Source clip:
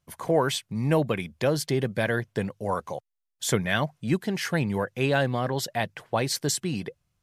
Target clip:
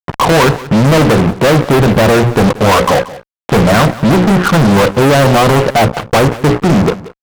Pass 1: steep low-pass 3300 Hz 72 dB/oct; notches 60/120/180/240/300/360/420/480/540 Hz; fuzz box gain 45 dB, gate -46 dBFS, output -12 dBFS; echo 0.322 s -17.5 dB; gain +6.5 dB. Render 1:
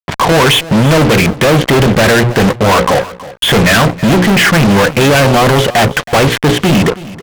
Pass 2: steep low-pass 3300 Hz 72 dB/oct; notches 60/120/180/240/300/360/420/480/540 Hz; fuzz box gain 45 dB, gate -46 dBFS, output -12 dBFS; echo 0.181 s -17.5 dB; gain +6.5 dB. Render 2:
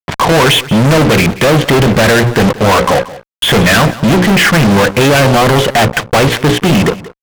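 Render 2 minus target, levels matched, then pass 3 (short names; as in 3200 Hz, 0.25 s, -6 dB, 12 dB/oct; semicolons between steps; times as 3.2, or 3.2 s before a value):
4000 Hz band +5.5 dB
steep low-pass 1400 Hz 72 dB/oct; notches 60/120/180/240/300/360/420/480/540 Hz; fuzz box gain 45 dB, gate -46 dBFS, output -12 dBFS; echo 0.181 s -17.5 dB; gain +6.5 dB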